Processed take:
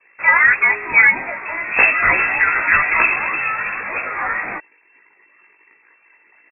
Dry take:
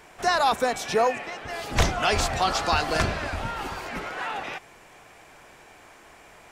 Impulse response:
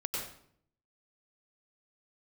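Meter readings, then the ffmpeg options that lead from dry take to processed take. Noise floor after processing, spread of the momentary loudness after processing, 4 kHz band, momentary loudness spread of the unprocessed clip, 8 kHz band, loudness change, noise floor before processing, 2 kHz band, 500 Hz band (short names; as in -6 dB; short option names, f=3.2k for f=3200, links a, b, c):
-56 dBFS, 12 LU, under -30 dB, 11 LU, under -40 dB, +11.0 dB, -51 dBFS, +17.5 dB, -4.0 dB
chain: -filter_complex "[0:a]anlmdn=0.0631,acontrast=81,asplit=2[a][b];[b]adelay=18,volume=-3dB[c];[a][c]amix=inputs=2:normalize=0,lowpass=f=2.3k:t=q:w=0.5098,lowpass=f=2.3k:t=q:w=0.6013,lowpass=f=2.3k:t=q:w=0.9,lowpass=f=2.3k:t=q:w=2.563,afreqshift=-2700,volume=1dB"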